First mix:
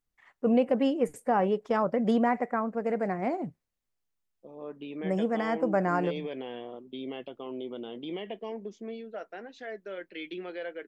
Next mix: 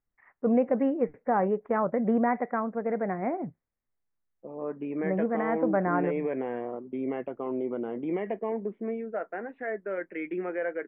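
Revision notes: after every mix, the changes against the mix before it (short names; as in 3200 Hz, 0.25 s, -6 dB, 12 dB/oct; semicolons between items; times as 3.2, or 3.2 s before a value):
second voice +6.5 dB; master: add steep low-pass 2200 Hz 48 dB/oct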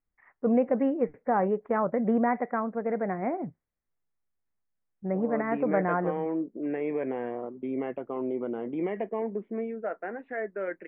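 second voice: entry +0.70 s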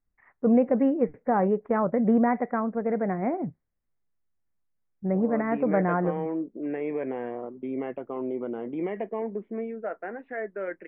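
first voice: add low shelf 320 Hz +6.5 dB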